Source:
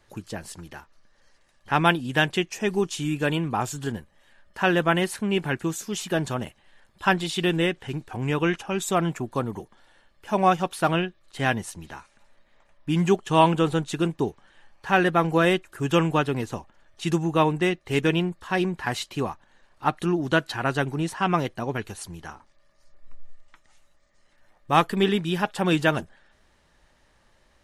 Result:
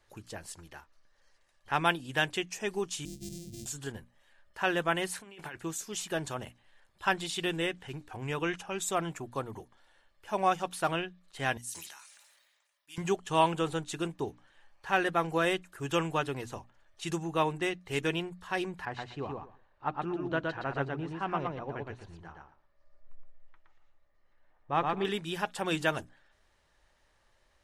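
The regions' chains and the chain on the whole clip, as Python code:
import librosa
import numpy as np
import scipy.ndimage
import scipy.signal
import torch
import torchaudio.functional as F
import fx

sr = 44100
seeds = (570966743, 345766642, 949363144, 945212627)

y = fx.chain(x, sr, fx.sample_sort(block=128),
    fx.cheby1_bandstop(low_hz=190.0, high_hz=6500.0, order=2),
    fx.high_shelf(hz=5800.0, db=-11.0), at=(3.05, 3.66))
y = fx.chain(y, sr, fx.over_compress(threshold_db=-29.0, ratio=-0.5),
    fx.low_shelf(hz=350.0, db=-11.5), at=(5.16, 5.56))
y = fx.chain(y, sr, fx.differentiator(),
    fx.sustainer(db_per_s=36.0), at=(11.57, 12.98))
y = fx.chain(y, sr, fx.spacing_loss(db_at_10k=30),
    fx.echo_feedback(ms=118, feedback_pct=17, wet_db=-3.0), at=(18.85, 25.05))
y = fx.peak_eq(y, sr, hz=210.0, db=-6.5, octaves=1.3)
y = fx.hum_notches(y, sr, base_hz=60, count=5)
y = fx.dynamic_eq(y, sr, hz=7900.0, q=1.1, threshold_db=-46.0, ratio=4.0, max_db=4)
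y = F.gain(torch.from_numpy(y), -6.5).numpy()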